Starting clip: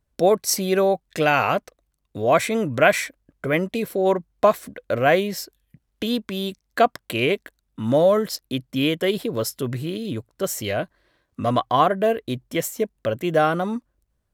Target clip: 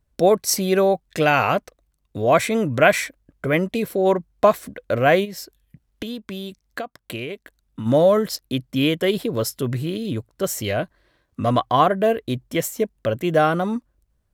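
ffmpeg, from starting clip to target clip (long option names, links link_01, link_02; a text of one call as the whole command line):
ffmpeg -i in.wav -filter_complex "[0:a]asplit=3[link_01][link_02][link_03];[link_01]afade=type=out:start_time=5.24:duration=0.02[link_04];[link_02]acompressor=threshold=-29dB:ratio=10,afade=type=in:start_time=5.24:duration=0.02,afade=type=out:start_time=7.85:duration=0.02[link_05];[link_03]afade=type=in:start_time=7.85:duration=0.02[link_06];[link_04][link_05][link_06]amix=inputs=3:normalize=0,lowshelf=frequency=140:gain=4.5,volume=1dB" out.wav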